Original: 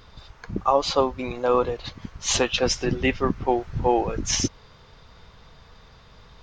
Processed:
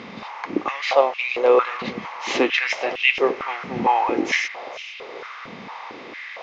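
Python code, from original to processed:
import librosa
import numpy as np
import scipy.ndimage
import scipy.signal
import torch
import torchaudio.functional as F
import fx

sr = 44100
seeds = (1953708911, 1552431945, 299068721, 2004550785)

y = fx.bin_compress(x, sr, power=0.6)
y = scipy.signal.sosfilt(scipy.signal.butter(2, 3700.0, 'lowpass', fs=sr, output='sos'), y)
y = fx.peak_eq(y, sr, hz=2200.0, db=11.0, octaves=0.41)
y = fx.echo_alternate(y, sr, ms=229, hz=1100.0, feedback_pct=50, wet_db=-11)
y = fx.filter_held_highpass(y, sr, hz=4.4, low_hz=210.0, high_hz=2700.0)
y = F.gain(torch.from_numpy(y), -4.5).numpy()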